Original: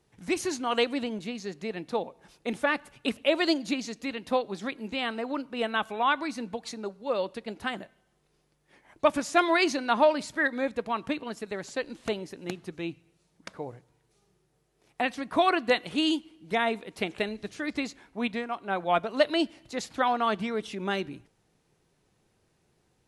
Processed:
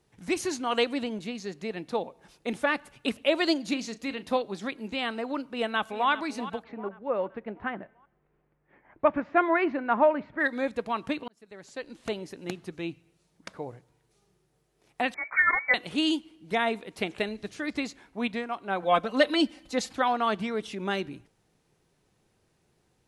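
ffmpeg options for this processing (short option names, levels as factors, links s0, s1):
-filter_complex "[0:a]asettb=1/sr,asplit=3[s0][s1][s2];[s0]atrim=end=3.684[s3];[s1]atrim=start=3.68:end=4.42,asetpts=PTS-STARTPTS,afade=t=in:d=0.004:c=qsin,afade=t=out:st=0.736:d=0.004:c=qsin,asplit=2[s4][s5];[s5]adelay=36,volume=0.2[s6];[s4][s6]amix=inputs=2:normalize=0,atrim=end_sample=32634[s7];[s2]atrim=start=4.416[s8];[s3][s7]acrossfade=d=0.004:c1=hsin:c2=qsin[s9];[s9][s8]acrossfade=d=0.004:c1=qsin:c2=hsin,asplit=2[s10][s11];[s11]afade=t=in:st=5.49:d=0.01,afade=t=out:st=6.1:d=0.01,aecho=0:1:390|780|1170|1560|1950:0.211349|0.105674|0.0528372|0.0264186|0.0132093[s12];[s10][s12]amix=inputs=2:normalize=0,asplit=3[s13][s14][s15];[s13]afade=t=out:st=6.62:d=0.02[s16];[s14]lowpass=f=2100:w=0.5412,lowpass=f=2100:w=1.3066,afade=t=in:st=6.62:d=0.02,afade=t=out:st=10.39:d=0.02[s17];[s15]afade=t=in:st=10.39:d=0.02[s18];[s16][s17][s18]amix=inputs=3:normalize=0,asettb=1/sr,asplit=3[s19][s20][s21];[s19]atrim=end=15.144[s22];[s20]atrim=start=15.14:end=15.74,asetpts=PTS-STARTPTS,afade=t=in:d=0.004:c=qsin,afade=t=out:st=0.596:d=0.004:c=qsin,lowpass=f=2100:t=q:w=0.5098,lowpass=f=2100:t=q:w=0.6013,lowpass=f=2100:t=q:w=0.9,lowpass=f=2100:t=q:w=2.563,afreqshift=-2500[s23];[s21]atrim=start=15.736[s24];[s22][s23]acrossfade=d=0.004:c1=hsin:c2=qsin[s25];[s25][s24]acrossfade=d=0.004:c1=qsin:c2=hsin,asettb=1/sr,asplit=3[s26][s27][s28];[s26]atrim=end=18.824[s29];[s27]atrim=start=18.82:end=19.93,asetpts=PTS-STARTPTS,afade=t=in:d=0.004:c=qsin,afade=t=out:st=1.106:d=0.004:c=qsin,aecho=1:1:3.9:0.93,atrim=end_sample=48951[s30];[s28]atrim=start=19.926[s31];[s29][s30]acrossfade=d=0.004:c1=hsin:c2=qsin[s32];[s32][s31]acrossfade=d=0.004:c1=qsin:c2=hsin,asplit=2[s33][s34];[s33]atrim=end=11.28,asetpts=PTS-STARTPTS,afade=t=out:st=11.276:d=0.004:c=hsin[s35];[s34]atrim=start=11.28,asetpts=PTS-STARTPTS,afade=t=in:d=1.02[s36];[s35][s36]concat=n=2:v=0:a=1"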